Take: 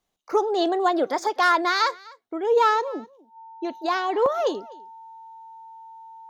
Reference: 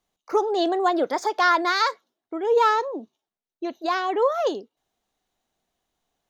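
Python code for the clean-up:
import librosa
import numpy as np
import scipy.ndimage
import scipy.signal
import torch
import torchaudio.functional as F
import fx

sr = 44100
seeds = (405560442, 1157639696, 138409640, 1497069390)

y = fx.fix_declip(x, sr, threshold_db=-9.5)
y = fx.notch(y, sr, hz=900.0, q=30.0)
y = fx.fix_interpolate(y, sr, at_s=(4.26,), length_ms=1.9)
y = fx.fix_echo_inverse(y, sr, delay_ms=251, level_db=-23.0)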